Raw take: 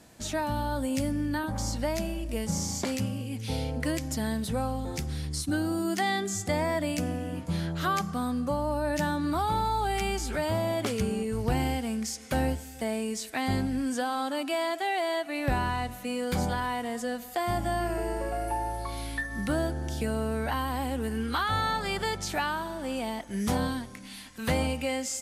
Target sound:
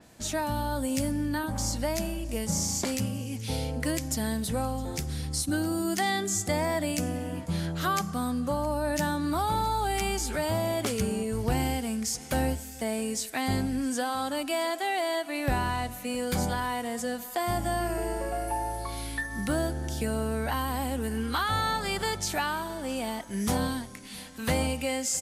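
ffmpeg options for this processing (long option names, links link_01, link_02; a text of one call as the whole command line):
ffmpeg -i in.wav -filter_complex "[0:a]asplit=2[link_01][link_02];[link_02]aecho=0:1:664:0.0841[link_03];[link_01][link_03]amix=inputs=2:normalize=0,adynamicequalizer=threshold=0.00447:dfrequency=5100:dqfactor=0.7:tfrequency=5100:tqfactor=0.7:attack=5:release=100:ratio=0.375:range=3:mode=boostabove:tftype=highshelf" out.wav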